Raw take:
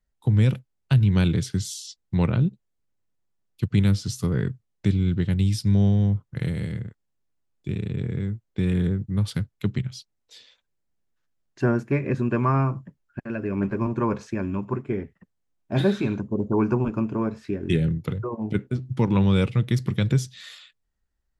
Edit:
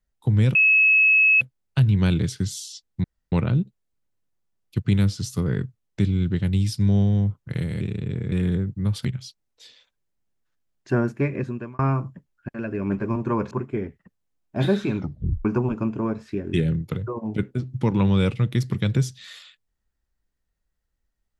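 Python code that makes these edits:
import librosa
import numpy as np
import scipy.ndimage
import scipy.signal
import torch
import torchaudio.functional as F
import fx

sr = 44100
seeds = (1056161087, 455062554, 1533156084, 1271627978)

y = fx.edit(x, sr, fx.insert_tone(at_s=0.55, length_s=0.86, hz=2580.0, db=-13.0),
    fx.insert_room_tone(at_s=2.18, length_s=0.28),
    fx.cut(start_s=6.67, length_s=1.02),
    fx.cut(start_s=8.2, length_s=0.44),
    fx.cut(start_s=9.37, length_s=0.39),
    fx.fade_out_span(start_s=11.98, length_s=0.52),
    fx.cut(start_s=14.22, length_s=0.45),
    fx.tape_stop(start_s=16.13, length_s=0.48), tone=tone)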